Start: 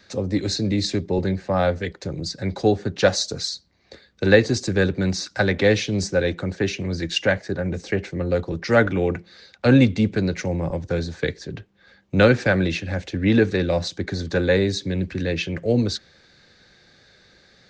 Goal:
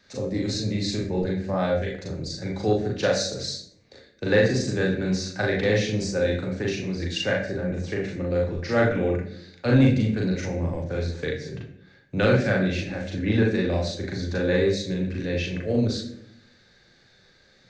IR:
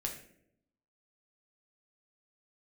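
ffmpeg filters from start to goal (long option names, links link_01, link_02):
-filter_complex "[0:a]asplit=2[link_01][link_02];[1:a]atrim=start_sample=2205,adelay=38[link_03];[link_02][link_03]afir=irnorm=-1:irlink=0,volume=1dB[link_04];[link_01][link_04]amix=inputs=2:normalize=0,asoftclip=type=tanh:threshold=0dB,volume=-7.5dB"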